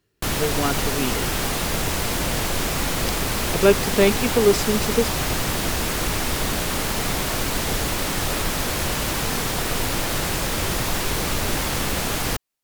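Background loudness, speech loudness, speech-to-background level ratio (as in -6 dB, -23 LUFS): -23.5 LUFS, -22.0 LUFS, 1.5 dB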